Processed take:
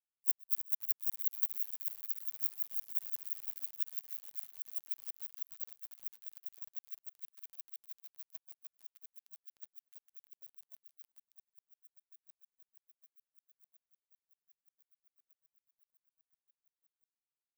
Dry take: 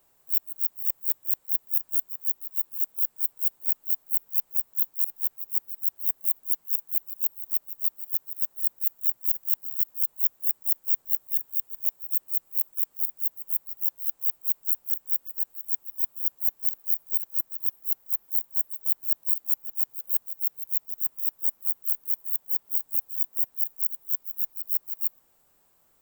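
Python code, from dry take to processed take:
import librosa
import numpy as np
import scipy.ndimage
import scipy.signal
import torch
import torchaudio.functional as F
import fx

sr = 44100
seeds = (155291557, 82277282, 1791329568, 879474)

y = fx.speed_glide(x, sr, from_pct=120, to_pct=176)
y = fx.power_curve(y, sr, exponent=2.0)
y = fx.echo_crushed(y, sr, ms=304, feedback_pct=80, bits=8, wet_db=-10.5)
y = y * 10.0 ** (6.5 / 20.0)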